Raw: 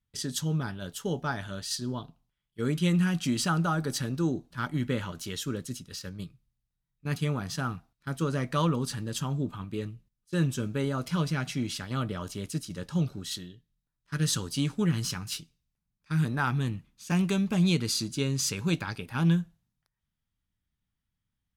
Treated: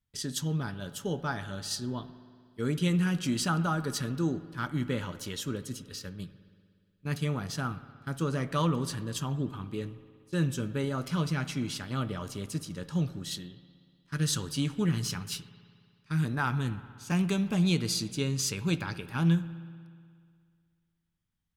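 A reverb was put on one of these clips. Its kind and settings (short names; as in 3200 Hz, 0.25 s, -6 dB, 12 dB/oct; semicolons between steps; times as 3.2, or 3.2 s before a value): spring tank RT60 2.1 s, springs 60 ms, chirp 70 ms, DRR 14 dB; gain -1.5 dB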